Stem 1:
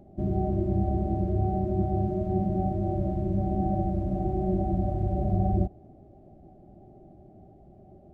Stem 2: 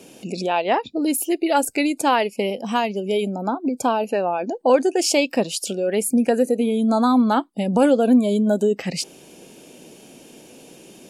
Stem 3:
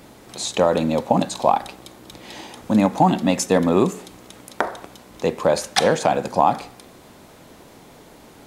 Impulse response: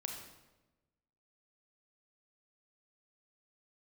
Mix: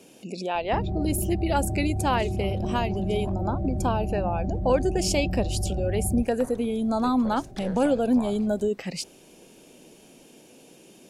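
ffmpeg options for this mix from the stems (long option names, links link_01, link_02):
-filter_complex "[0:a]adelay=550,volume=2.5dB[link_01];[1:a]volume=-6.5dB,asplit=2[link_02][link_03];[2:a]aeval=exprs='if(lt(val(0),0),0.708*val(0),val(0))':channel_layout=same,acompressor=threshold=-23dB:ratio=2,adelay=1800,volume=-15dB,asplit=3[link_04][link_05][link_06];[link_04]atrim=end=3.34,asetpts=PTS-STARTPTS,afade=type=out:start_time=3.336:duration=0.004:curve=hsin[link_07];[link_05]atrim=start=3.34:end=6.2,asetpts=PTS-STARTPTS,volume=0[link_08];[link_06]atrim=start=6.2,asetpts=PTS-STARTPTS,afade=type=in:duration=0.004:curve=hsin[link_09];[link_07][link_08][link_09]concat=n=3:v=0:a=1[link_10];[link_03]apad=whole_len=452469[link_11];[link_10][link_11]sidechaingate=range=-7dB:threshold=-38dB:ratio=16:detection=peak[link_12];[link_01][link_12]amix=inputs=2:normalize=0,lowshelf=frequency=110:gain=11.5,alimiter=limit=-23dB:level=0:latency=1:release=11,volume=0dB[link_13];[link_02][link_13]amix=inputs=2:normalize=0"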